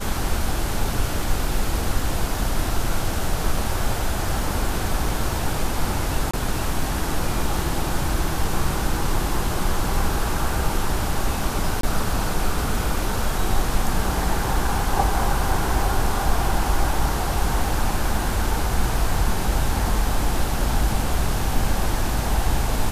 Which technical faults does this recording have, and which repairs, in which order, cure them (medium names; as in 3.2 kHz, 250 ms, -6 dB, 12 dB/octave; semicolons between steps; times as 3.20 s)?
6.31–6.33 s: dropout 25 ms
11.81–11.83 s: dropout 23 ms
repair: interpolate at 6.31 s, 25 ms; interpolate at 11.81 s, 23 ms